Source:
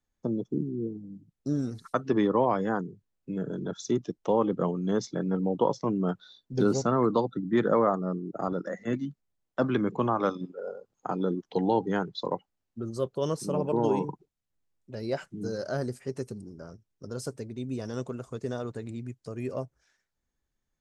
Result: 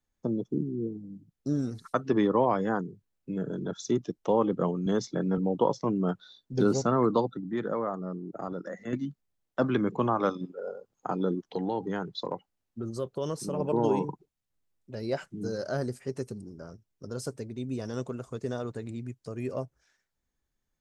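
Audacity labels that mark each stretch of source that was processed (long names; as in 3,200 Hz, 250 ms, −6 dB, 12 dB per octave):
4.860000	5.380000	multiband upward and downward compressor depth 40%
7.330000	8.930000	downward compressor 1.5 to 1, threshold −39 dBFS
11.460000	13.600000	downward compressor 2.5 to 1, threshold −28 dBFS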